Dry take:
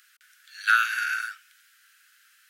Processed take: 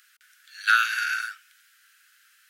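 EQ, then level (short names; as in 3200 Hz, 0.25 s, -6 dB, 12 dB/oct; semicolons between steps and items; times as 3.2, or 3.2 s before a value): dynamic EQ 4400 Hz, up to +5 dB, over -40 dBFS, Q 1.1; 0.0 dB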